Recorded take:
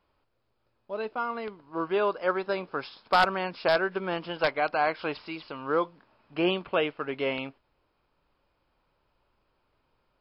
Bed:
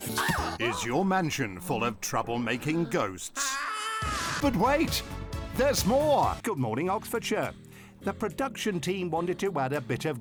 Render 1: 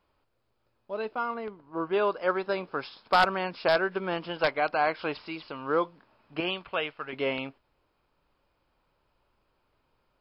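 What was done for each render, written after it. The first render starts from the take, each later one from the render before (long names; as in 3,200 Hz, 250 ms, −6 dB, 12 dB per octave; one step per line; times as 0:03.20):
0:01.34–0:01.93: high-shelf EQ 2,500 Hz −11 dB
0:06.40–0:07.13: parametric band 280 Hz −10 dB 2.4 octaves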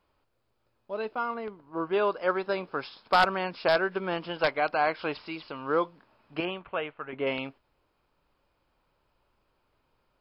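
0:06.45–0:07.27: Gaussian smoothing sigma 3.1 samples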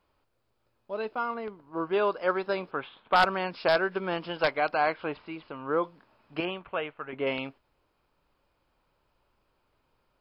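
0:02.71–0:03.16: elliptic low-pass filter 3,400 Hz, stop band 50 dB
0:04.94–0:05.84: high-frequency loss of the air 360 metres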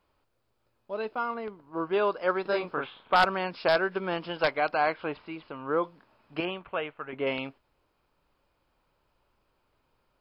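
0:02.42–0:03.14: double-tracking delay 34 ms −2 dB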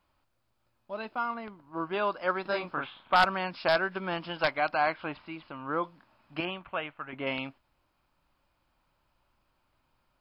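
parametric band 440 Hz −11 dB 0.45 octaves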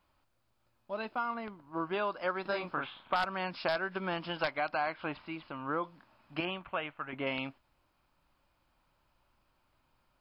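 downward compressor 3 to 1, threshold −30 dBFS, peak gain reduction 9.5 dB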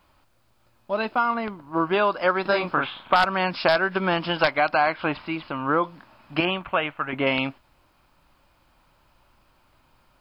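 level +12 dB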